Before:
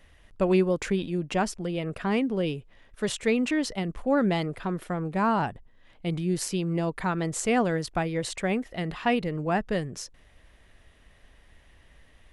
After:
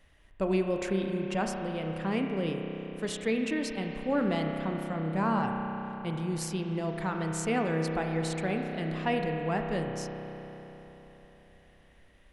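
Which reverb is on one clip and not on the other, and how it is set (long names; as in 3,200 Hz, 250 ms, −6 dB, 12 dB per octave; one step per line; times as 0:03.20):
spring reverb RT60 3.9 s, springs 31 ms, chirp 65 ms, DRR 2.5 dB
level −5.5 dB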